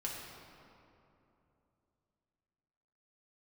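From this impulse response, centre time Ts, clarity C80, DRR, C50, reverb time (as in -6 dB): 109 ms, 2.0 dB, -4.0 dB, 0.5 dB, 2.9 s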